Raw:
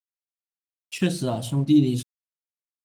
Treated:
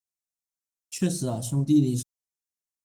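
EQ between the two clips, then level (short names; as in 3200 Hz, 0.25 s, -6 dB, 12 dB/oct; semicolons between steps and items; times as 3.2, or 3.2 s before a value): tilt -1.5 dB/oct; resonant high shelf 4400 Hz +12 dB, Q 1.5; notch 4700 Hz, Q 17; -5.5 dB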